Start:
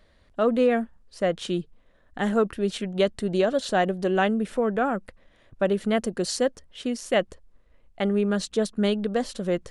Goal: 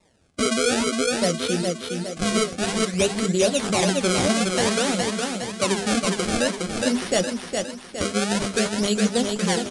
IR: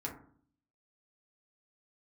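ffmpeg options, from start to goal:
-filter_complex "[0:a]highpass=120,equalizer=f=1.4k:w=0.34:g=-10,bandreject=f=50:t=h:w=6,bandreject=f=100:t=h:w=6,bandreject=f=150:t=h:w=6,bandreject=f=200:t=h:w=6,bandreject=f=250:t=h:w=6,bandreject=f=300:t=h:w=6,bandreject=f=350:t=h:w=6,bandreject=f=400:t=h:w=6,acrusher=samples=28:mix=1:aa=0.000001:lfo=1:lforange=44.8:lforate=0.53,highshelf=f=3.3k:g=10.5,asplit=2[a][b];[b]aecho=0:1:412|824|1236|1648|2060|2472:0.562|0.287|0.146|0.0746|0.038|0.0194[c];[a][c]amix=inputs=2:normalize=0,flanger=delay=5.6:depth=6.8:regen=49:speed=1.8:shape=sinusoidal,aresample=22050,aresample=44100,alimiter=level_in=18.5dB:limit=-1dB:release=50:level=0:latency=1,volume=-8dB"

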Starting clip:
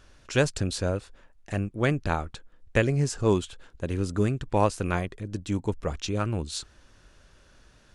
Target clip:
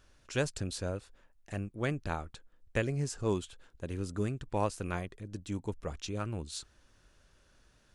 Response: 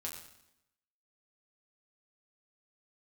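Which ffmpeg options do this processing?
-af "highshelf=f=9.9k:g=6.5,volume=-8.5dB"

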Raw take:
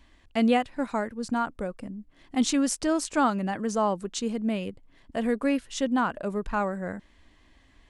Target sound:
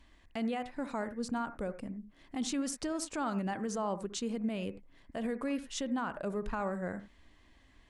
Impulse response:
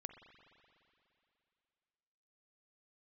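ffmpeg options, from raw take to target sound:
-filter_complex "[0:a]alimiter=limit=-23dB:level=0:latency=1:release=80[a];[1:a]atrim=start_sample=2205,atrim=end_sample=3528,asetrate=30870,aresample=44100[b];[a][b]afir=irnorm=-1:irlink=0"

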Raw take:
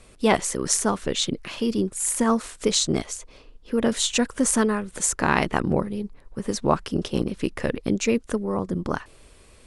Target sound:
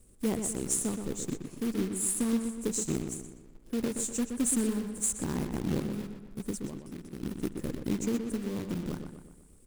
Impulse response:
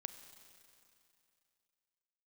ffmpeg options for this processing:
-filter_complex "[0:a]firequalizer=gain_entry='entry(310,0);entry(670,-14);entry(3300,-25);entry(7500,2)':delay=0.05:min_phase=1,asettb=1/sr,asplit=3[a][b][c];[a]atrim=end=6.654[d];[b]atrim=start=6.65:end=7.23,asetpts=PTS-STARTPTS,afade=t=in:d=0.004:c=qsin,afade=t=out:st=0.576:d=0.004:c=qsin,acompressor=threshold=-34dB:ratio=4[e];[c]atrim=start=7.226[f];[d][e]acrossfade=d=0.004:c1=hsin:c2=qsin[g];[g][f]acrossfade=d=0.004:c1=qsin:c2=hsin,acrusher=bits=3:mode=log:mix=0:aa=0.000001,asplit=2[h][i];[i]adelay=123,lowpass=f=3.6k:p=1,volume=-6.5dB,asplit=2[j][k];[k]adelay=123,lowpass=f=3.6k:p=1,volume=0.5,asplit=2[l][m];[m]adelay=123,lowpass=f=3.6k:p=1,volume=0.5,asplit=2[n][o];[o]adelay=123,lowpass=f=3.6k:p=1,volume=0.5,asplit=2[p][q];[q]adelay=123,lowpass=f=3.6k:p=1,volume=0.5,asplit=2[r][s];[s]adelay=123,lowpass=f=3.6k:p=1,volume=0.5[t];[h][j][l][n][p][r][t]amix=inputs=7:normalize=0,volume=-7dB"

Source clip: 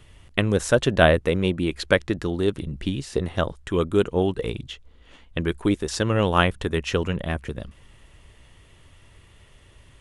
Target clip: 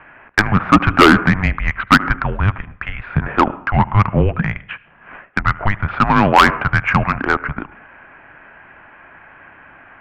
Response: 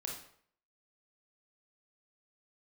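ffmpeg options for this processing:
-filter_complex "[0:a]equalizer=f=1.6k:t=o:w=2.3:g=14.5,highpass=f=300:t=q:w=0.5412,highpass=f=300:t=q:w=1.307,lowpass=f=2.5k:t=q:w=0.5176,lowpass=f=2.5k:t=q:w=0.7071,lowpass=f=2.5k:t=q:w=1.932,afreqshift=-300,asplit=2[a][b];[1:a]atrim=start_sample=2205,adelay=75[c];[b][c]afir=irnorm=-1:irlink=0,volume=-19.5dB[d];[a][d]amix=inputs=2:normalize=0,acontrast=89,volume=-1dB"

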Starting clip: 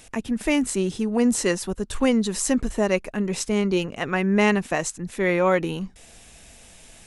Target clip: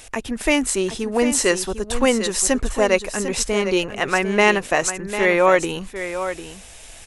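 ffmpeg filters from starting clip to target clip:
-af "equalizer=f=190:w=1.1:g=-11,aecho=1:1:749:0.299,volume=6.5dB"

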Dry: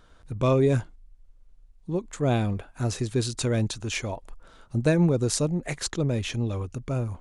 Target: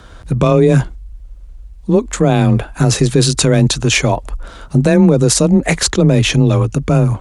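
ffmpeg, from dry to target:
-af "afreqshift=20,alimiter=level_in=18.5dB:limit=-1dB:release=50:level=0:latency=1,volume=-1dB"

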